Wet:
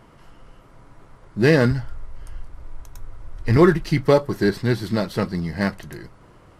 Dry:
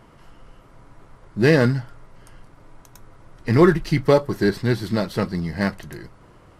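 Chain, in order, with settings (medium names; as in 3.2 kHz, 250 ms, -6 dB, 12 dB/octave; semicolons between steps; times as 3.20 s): 1.71–3.57 s: resonant low shelf 100 Hz +13 dB, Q 1.5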